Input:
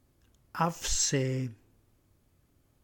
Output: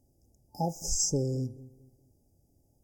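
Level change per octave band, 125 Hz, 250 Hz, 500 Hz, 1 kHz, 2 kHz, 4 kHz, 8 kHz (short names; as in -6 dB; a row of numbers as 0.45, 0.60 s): 0.0 dB, 0.0 dB, 0.0 dB, -4.5 dB, under -40 dB, -3.5 dB, 0.0 dB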